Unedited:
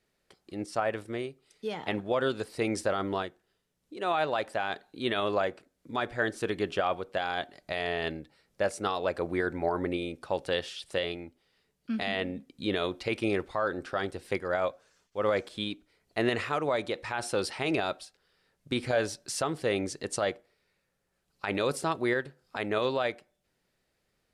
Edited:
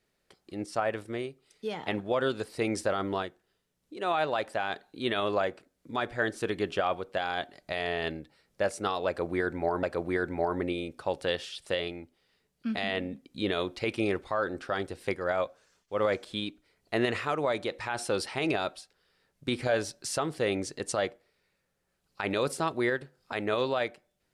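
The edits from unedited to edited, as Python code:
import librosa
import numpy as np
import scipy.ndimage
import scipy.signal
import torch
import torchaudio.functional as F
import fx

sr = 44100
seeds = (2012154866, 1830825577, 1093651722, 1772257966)

y = fx.edit(x, sr, fx.repeat(start_s=9.07, length_s=0.76, count=2), tone=tone)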